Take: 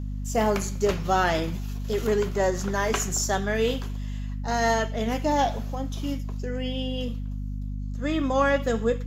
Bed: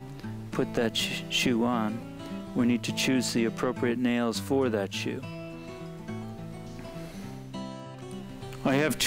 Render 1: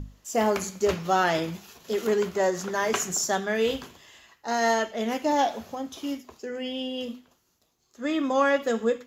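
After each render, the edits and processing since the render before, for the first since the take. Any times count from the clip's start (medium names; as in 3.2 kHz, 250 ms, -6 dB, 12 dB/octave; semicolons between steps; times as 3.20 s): hum notches 50/100/150/200/250 Hz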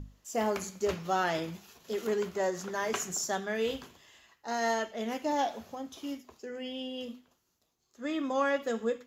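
trim -6.5 dB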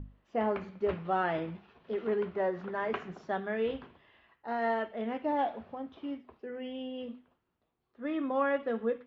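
Bessel low-pass 2 kHz, order 6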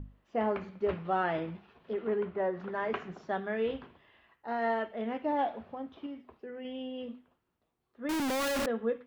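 1.93–2.60 s: distance through air 200 m; 6.06–6.65 s: compression 3:1, threshold -39 dBFS; 8.09–8.66 s: one-bit comparator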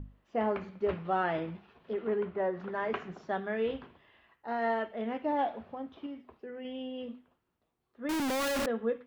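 no audible change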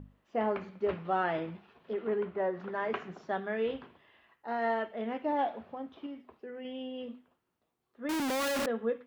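bass shelf 75 Hz -11.5 dB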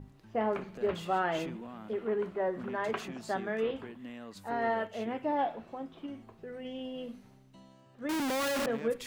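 add bed -18.5 dB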